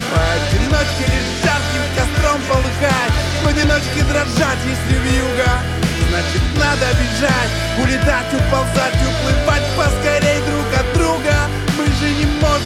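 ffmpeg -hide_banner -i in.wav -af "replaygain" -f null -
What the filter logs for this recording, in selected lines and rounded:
track_gain = -1.3 dB
track_peak = 0.464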